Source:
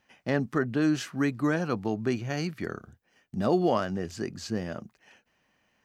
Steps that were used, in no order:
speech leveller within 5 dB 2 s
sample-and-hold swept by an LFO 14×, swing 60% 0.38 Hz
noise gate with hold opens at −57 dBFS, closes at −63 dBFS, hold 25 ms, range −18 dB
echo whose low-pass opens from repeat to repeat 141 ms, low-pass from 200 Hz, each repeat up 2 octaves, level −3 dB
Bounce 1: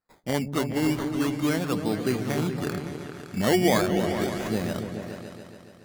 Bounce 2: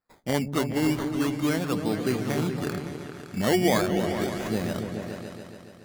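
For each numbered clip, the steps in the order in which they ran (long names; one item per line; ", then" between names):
speech leveller, then noise gate with hold, then sample-and-hold swept by an LFO, then echo whose low-pass opens from repeat to repeat
sample-and-hold swept by an LFO, then echo whose low-pass opens from repeat to repeat, then speech leveller, then noise gate with hold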